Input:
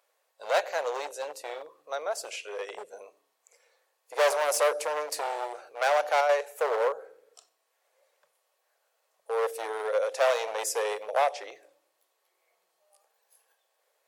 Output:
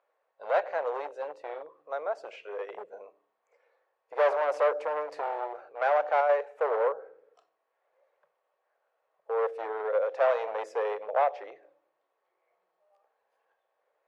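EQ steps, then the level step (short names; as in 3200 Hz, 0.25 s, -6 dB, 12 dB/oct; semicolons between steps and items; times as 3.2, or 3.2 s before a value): LPF 1600 Hz 12 dB/oct; 0.0 dB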